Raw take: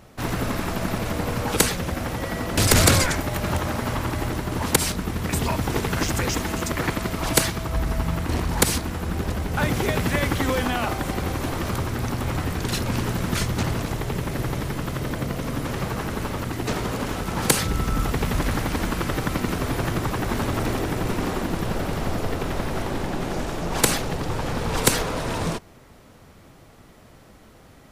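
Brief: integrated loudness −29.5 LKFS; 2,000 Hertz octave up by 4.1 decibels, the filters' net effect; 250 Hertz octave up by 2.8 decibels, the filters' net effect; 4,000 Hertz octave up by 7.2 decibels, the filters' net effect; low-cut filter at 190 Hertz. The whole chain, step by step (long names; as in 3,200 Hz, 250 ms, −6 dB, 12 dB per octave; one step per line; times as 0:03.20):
high-pass filter 190 Hz
parametric band 250 Hz +5.5 dB
parametric band 2,000 Hz +3 dB
parametric band 4,000 Hz +8 dB
level −7 dB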